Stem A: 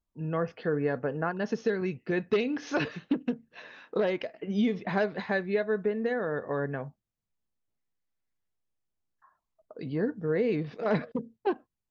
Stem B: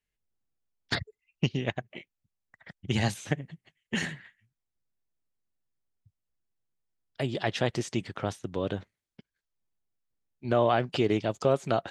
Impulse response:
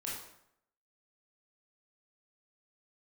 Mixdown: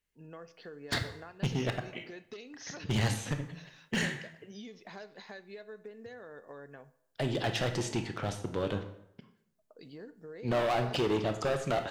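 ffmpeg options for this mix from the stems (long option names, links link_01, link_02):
-filter_complex "[0:a]bass=frequency=250:gain=-7,treble=frequency=4000:gain=14,acompressor=threshold=-35dB:ratio=3,adynamicequalizer=threshold=0.00158:dfrequency=4400:dqfactor=0.7:tfrequency=4400:tqfactor=0.7:attack=5:release=100:ratio=0.375:range=3:mode=boostabove:tftype=highshelf,volume=-11.5dB,asplit=2[link_01][link_02];[link_02]volume=-15dB[link_03];[1:a]asoftclip=type=hard:threshold=-26dB,volume=-2dB,asplit=2[link_04][link_05];[link_05]volume=-4dB[link_06];[2:a]atrim=start_sample=2205[link_07];[link_03][link_06]amix=inputs=2:normalize=0[link_08];[link_08][link_07]afir=irnorm=-1:irlink=0[link_09];[link_01][link_04][link_09]amix=inputs=3:normalize=0"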